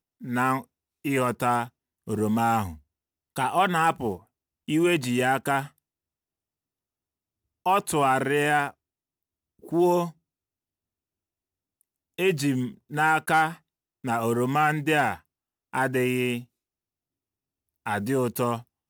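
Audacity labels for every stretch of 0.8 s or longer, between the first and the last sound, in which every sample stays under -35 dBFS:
5.670000	7.660000	silence
8.700000	9.670000	silence
10.090000	12.190000	silence
16.410000	17.860000	silence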